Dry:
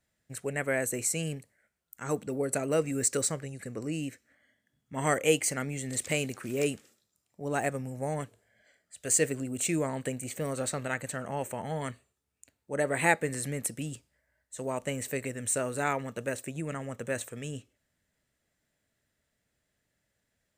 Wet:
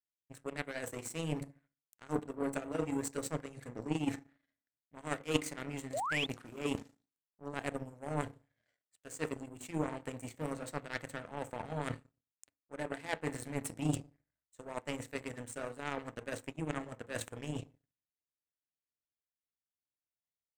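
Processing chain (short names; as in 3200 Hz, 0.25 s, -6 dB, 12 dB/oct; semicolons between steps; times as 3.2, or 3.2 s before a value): high shelf 7200 Hz -11 dB; reverse; compressor 10:1, threshold -43 dBFS, peak gain reduction 24 dB; reverse; FDN reverb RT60 0.52 s, low-frequency decay 1.35×, high-frequency decay 0.4×, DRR 5.5 dB; power-law curve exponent 2; painted sound rise, 5.93–6.26, 500–3700 Hz -52 dBFS; gain +16.5 dB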